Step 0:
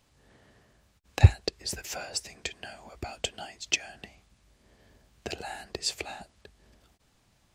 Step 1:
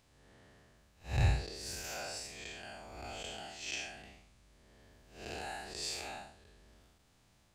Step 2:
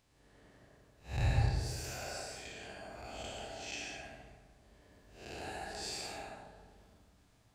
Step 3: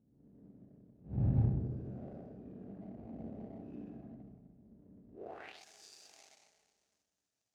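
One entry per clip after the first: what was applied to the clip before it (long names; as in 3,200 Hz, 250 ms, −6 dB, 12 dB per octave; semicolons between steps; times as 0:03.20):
spectrum smeared in time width 179 ms
delay with a low-pass on its return 62 ms, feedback 75%, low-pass 1,200 Hz, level −10 dB; dense smooth reverb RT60 1 s, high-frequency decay 0.45×, pre-delay 90 ms, DRR −0.5 dB; level −4 dB
running median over 41 samples; band-pass filter sweep 210 Hz → 6,400 Hz, 0:05.10–0:05.64; level +12 dB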